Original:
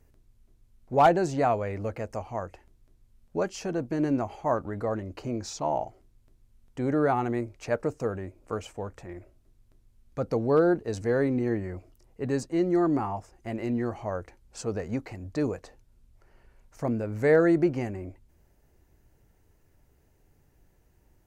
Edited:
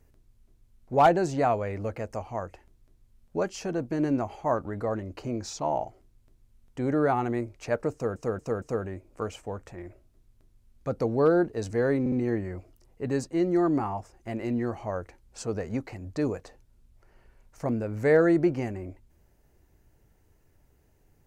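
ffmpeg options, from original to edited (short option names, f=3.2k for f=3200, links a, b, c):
-filter_complex "[0:a]asplit=6[a][b][c][d][e][f];[a]atrim=end=8.162[g];[b]atrim=start=7.928:end=8.162[h];[c]atrim=start=7.928:end=8.162[i];[d]atrim=start=7.928:end=11.372[j];[e]atrim=start=11.308:end=11.372[k];[f]atrim=start=11.308[l];[g][h]acrossfade=d=0.004:c1=hsin:c2=hsin[m];[m][i]acrossfade=d=0.004:c1=hsin:c2=hsin[n];[n][j]acrossfade=d=0.004:c1=hsin:c2=hsin[o];[o][k]acrossfade=d=0.004:c1=hsin:c2=hsin[p];[p][l]acrossfade=d=0.004:c1=hsin:c2=hsin"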